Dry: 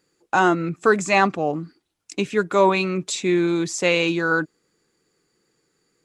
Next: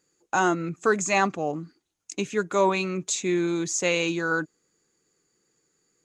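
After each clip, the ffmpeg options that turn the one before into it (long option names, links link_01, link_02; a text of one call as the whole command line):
ffmpeg -i in.wav -af "equalizer=frequency=6600:width_type=o:width=0.24:gain=12,volume=-5dB" out.wav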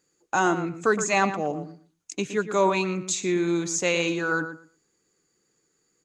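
ffmpeg -i in.wav -filter_complex "[0:a]asplit=2[link_01][link_02];[link_02]adelay=117,lowpass=frequency=2800:poles=1,volume=-10dB,asplit=2[link_03][link_04];[link_04]adelay=117,lowpass=frequency=2800:poles=1,volume=0.18,asplit=2[link_05][link_06];[link_06]adelay=117,lowpass=frequency=2800:poles=1,volume=0.18[link_07];[link_01][link_03][link_05][link_07]amix=inputs=4:normalize=0" out.wav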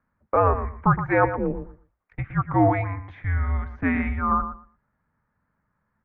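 ffmpeg -i in.wav -af "lowshelf=frequency=330:gain=-7.5,highpass=frequency=260:width_type=q:width=0.5412,highpass=frequency=260:width_type=q:width=1.307,lowpass=frequency=2100:width_type=q:width=0.5176,lowpass=frequency=2100:width_type=q:width=0.7071,lowpass=frequency=2100:width_type=q:width=1.932,afreqshift=-270,volume=5dB" out.wav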